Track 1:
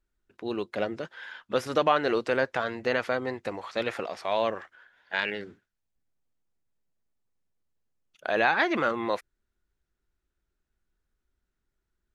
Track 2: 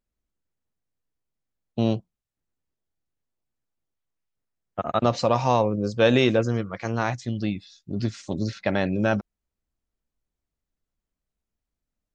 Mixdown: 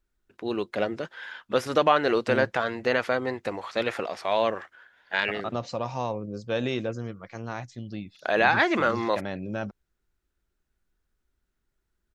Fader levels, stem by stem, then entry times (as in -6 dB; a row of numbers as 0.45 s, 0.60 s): +2.5 dB, -9.5 dB; 0.00 s, 0.50 s